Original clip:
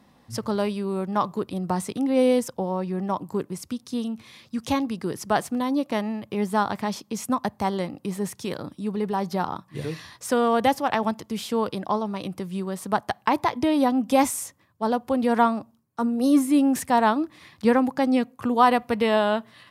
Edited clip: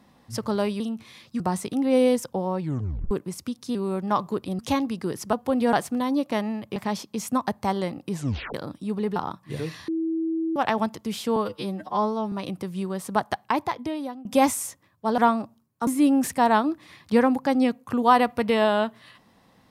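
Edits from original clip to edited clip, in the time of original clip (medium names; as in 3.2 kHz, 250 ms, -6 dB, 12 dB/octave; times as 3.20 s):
0.80–1.64 s: swap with 3.99–4.59 s
2.84 s: tape stop 0.51 s
6.36–6.73 s: delete
8.09 s: tape stop 0.42 s
9.13–9.41 s: delete
10.13–10.81 s: bleep 325 Hz -23 dBFS
11.61–12.09 s: stretch 2×
13.07–14.02 s: fade out, to -24 dB
14.95–15.35 s: move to 5.33 s
16.04–16.39 s: delete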